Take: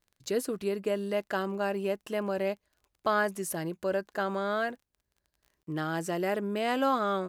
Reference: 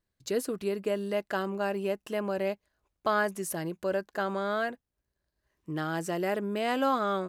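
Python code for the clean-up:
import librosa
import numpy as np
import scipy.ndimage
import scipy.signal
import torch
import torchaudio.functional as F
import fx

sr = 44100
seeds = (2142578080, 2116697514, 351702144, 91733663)

y = fx.fix_declick_ar(x, sr, threshold=6.5)
y = fx.fix_interpolate(y, sr, at_s=(5.63,), length_ms=43.0)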